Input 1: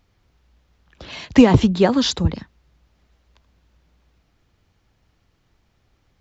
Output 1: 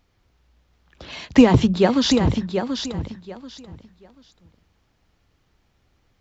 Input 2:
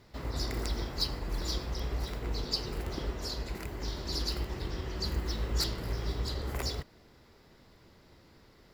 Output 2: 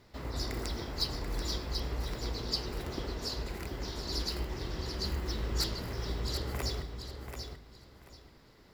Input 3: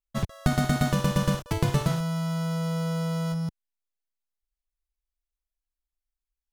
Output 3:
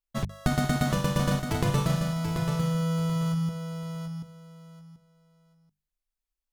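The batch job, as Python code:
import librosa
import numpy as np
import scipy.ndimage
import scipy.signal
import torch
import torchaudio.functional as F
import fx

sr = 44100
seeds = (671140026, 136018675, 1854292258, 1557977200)

y = fx.hum_notches(x, sr, base_hz=50, count=4)
y = fx.echo_feedback(y, sr, ms=735, feedback_pct=22, wet_db=-7)
y = y * 10.0 ** (-1.0 / 20.0)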